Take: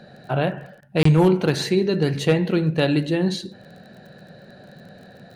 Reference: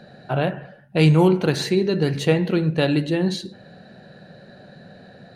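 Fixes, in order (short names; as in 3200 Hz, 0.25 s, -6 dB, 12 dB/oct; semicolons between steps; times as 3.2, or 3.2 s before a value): clip repair -8.5 dBFS; de-click; interpolate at 1.03, 24 ms; interpolate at 0.81, 11 ms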